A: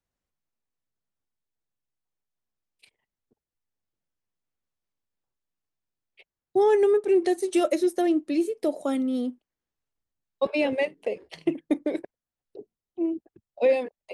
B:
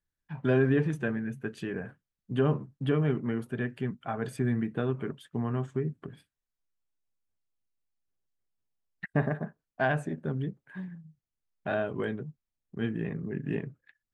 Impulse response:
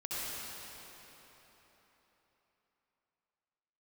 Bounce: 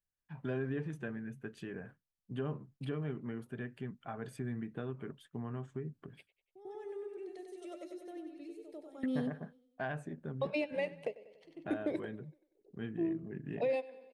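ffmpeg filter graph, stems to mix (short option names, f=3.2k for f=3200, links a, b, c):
-filter_complex "[0:a]highshelf=f=7.3k:g=-5.5,alimiter=limit=-17dB:level=0:latency=1:release=12,volume=-2.5dB,asplit=2[a][b];[b]volume=-21dB[c];[1:a]volume=-8dB,asplit=2[d][e];[e]apad=whole_len=623274[f];[a][f]sidechaingate=range=-31dB:threshold=-58dB:ratio=16:detection=peak[g];[c]aecho=0:1:95|190|285|380|475|570|665:1|0.5|0.25|0.125|0.0625|0.0312|0.0156[h];[g][d][h]amix=inputs=3:normalize=0,acompressor=threshold=-40dB:ratio=1.5"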